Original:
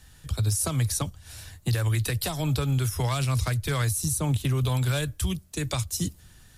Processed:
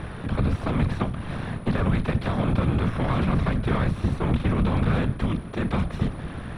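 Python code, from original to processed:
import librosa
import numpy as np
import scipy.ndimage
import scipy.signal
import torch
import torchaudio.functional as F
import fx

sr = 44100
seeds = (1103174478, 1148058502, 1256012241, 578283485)

y = fx.bin_compress(x, sr, power=0.4)
y = fx.peak_eq(y, sr, hz=12000.0, db=-11.5, octaves=0.85)
y = y + 10.0 ** (-31.0 / 20.0) * np.sin(2.0 * np.pi * 9700.0 * np.arange(len(y)) / sr)
y = fx.whisperise(y, sr, seeds[0])
y = fx.cheby_harmonics(y, sr, harmonics=(8,), levels_db=(-28,), full_scale_db=-8.5)
y = fx.air_absorb(y, sr, metres=500.0)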